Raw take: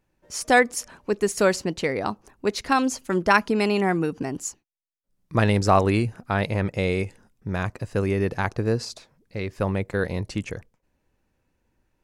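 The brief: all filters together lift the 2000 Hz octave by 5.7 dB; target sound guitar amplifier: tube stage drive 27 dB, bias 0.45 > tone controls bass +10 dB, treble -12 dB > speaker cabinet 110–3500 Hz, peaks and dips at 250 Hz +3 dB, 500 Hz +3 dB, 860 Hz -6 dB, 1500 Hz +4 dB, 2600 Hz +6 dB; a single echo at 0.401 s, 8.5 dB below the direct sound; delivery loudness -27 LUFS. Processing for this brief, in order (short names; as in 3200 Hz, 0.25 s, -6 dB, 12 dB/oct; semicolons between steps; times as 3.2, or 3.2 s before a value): bell 2000 Hz +4.5 dB; echo 0.401 s -8.5 dB; tube stage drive 27 dB, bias 0.45; tone controls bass +10 dB, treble -12 dB; speaker cabinet 110–3500 Hz, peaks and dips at 250 Hz +3 dB, 500 Hz +3 dB, 860 Hz -6 dB, 1500 Hz +4 dB, 2600 Hz +6 dB; gain +1 dB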